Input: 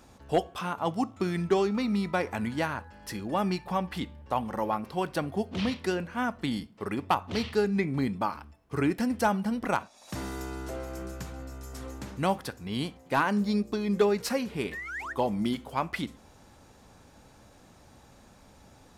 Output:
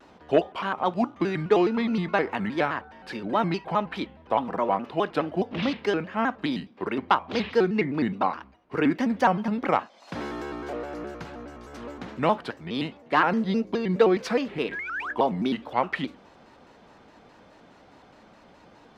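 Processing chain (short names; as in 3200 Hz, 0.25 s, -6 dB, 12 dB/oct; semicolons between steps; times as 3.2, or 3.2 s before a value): three-band isolator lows -14 dB, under 190 Hz, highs -22 dB, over 4300 Hz; shaped vibrato square 4.8 Hz, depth 160 cents; gain +5 dB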